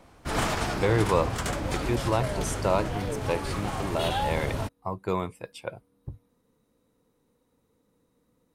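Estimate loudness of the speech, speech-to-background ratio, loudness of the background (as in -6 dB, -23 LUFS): -30.5 LUFS, 0.5 dB, -31.0 LUFS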